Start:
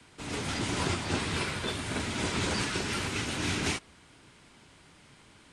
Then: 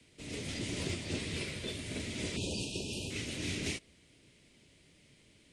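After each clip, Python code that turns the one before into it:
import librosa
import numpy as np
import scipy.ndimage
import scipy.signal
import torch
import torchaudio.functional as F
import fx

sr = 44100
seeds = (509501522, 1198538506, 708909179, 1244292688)

y = np.clip(x, -10.0 ** (-19.5 / 20.0), 10.0 ** (-19.5 / 20.0))
y = fx.spec_erase(y, sr, start_s=2.36, length_s=0.74, low_hz=970.0, high_hz=2400.0)
y = fx.band_shelf(y, sr, hz=1100.0, db=-13.0, octaves=1.3)
y = F.gain(torch.from_numpy(y), -5.5).numpy()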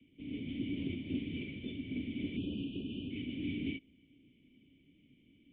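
y = fx.formant_cascade(x, sr, vowel='i')
y = F.gain(torch.from_numpy(y), 7.5).numpy()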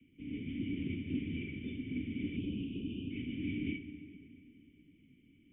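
y = fx.fixed_phaser(x, sr, hz=1800.0, stages=4)
y = fx.rev_plate(y, sr, seeds[0], rt60_s=3.3, hf_ratio=0.65, predelay_ms=0, drr_db=9.0)
y = F.gain(torch.from_numpy(y), 1.5).numpy()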